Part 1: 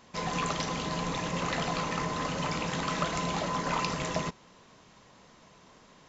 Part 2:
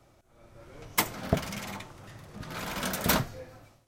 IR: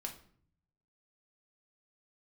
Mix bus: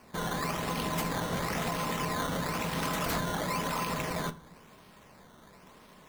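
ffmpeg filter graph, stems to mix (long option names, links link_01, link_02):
-filter_complex "[0:a]alimiter=level_in=1dB:limit=-24dB:level=0:latency=1:release=36,volume=-1dB,acrusher=samples=12:mix=1:aa=0.000001:lfo=1:lforange=12:lforate=0.98,volume=-1.5dB,asplit=2[link_01][link_02];[link_02]volume=-4.5dB[link_03];[1:a]asoftclip=type=hard:threshold=-23.5dB,volume=-7dB[link_04];[2:a]atrim=start_sample=2205[link_05];[link_03][link_05]afir=irnorm=-1:irlink=0[link_06];[link_01][link_04][link_06]amix=inputs=3:normalize=0"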